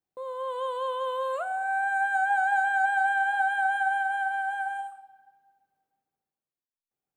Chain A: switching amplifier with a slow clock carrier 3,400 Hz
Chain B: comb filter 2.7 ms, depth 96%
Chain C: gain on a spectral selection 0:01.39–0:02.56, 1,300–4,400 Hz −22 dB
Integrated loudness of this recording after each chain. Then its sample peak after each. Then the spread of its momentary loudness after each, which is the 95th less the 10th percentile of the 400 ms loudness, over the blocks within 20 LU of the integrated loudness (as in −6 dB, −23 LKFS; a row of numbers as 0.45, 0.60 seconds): −29.5, −22.5, −27.5 LKFS; −16.0, −11.0, −15.5 dBFS; 12, 12, 9 LU